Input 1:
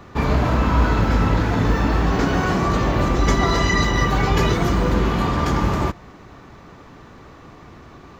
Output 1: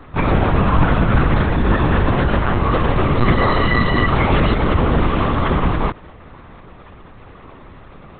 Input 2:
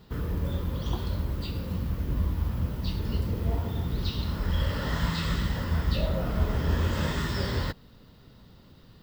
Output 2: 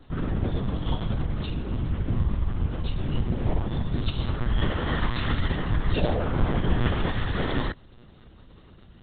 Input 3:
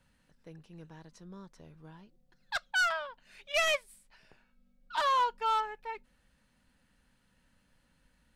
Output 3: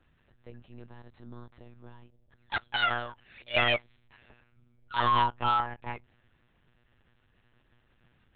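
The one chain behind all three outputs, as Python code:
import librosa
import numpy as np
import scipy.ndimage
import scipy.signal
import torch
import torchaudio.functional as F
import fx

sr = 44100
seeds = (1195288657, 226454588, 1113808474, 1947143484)

y = fx.lpc_monotone(x, sr, seeds[0], pitch_hz=120.0, order=10)
y = y * 10.0 ** (3.0 / 20.0)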